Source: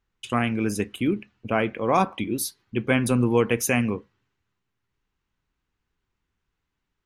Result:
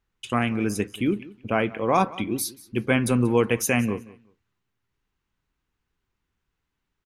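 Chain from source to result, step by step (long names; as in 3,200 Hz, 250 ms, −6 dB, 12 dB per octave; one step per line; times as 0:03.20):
repeating echo 183 ms, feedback 21%, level −20 dB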